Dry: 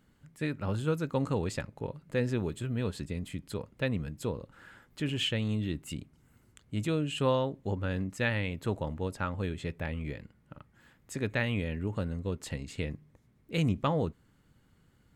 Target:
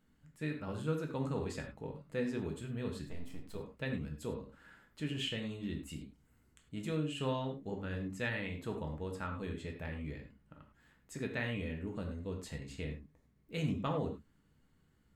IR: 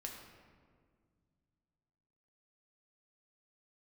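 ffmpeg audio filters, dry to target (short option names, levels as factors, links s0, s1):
-filter_complex "[0:a]asettb=1/sr,asplit=3[s0][s1][s2];[s0]atrim=end=3.054[s3];[s1]atrim=start=3.05:end=3.55,asetpts=PTS-STARTPTS,afade=t=in:d=0.004:c=qsin,afade=t=out:st=0.496:d=0.004:c=qsin,aeval=exprs='max(val(0),0)':c=same[s4];[s2]atrim=start=3.546[s5];[s3][s4]acrossfade=d=0.004:c1=hsin:c2=qsin[s6];[s6][s5]acrossfade=d=0.004:c1=qsin:c2=hsin[s7];[1:a]atrim=start_sample=2205,afade=t=out:st=0.16:d=0.01,atrim=end_sample=7497[s8];[s7][s8]afir=irnorm=-1:irlink=0,volume=0.708"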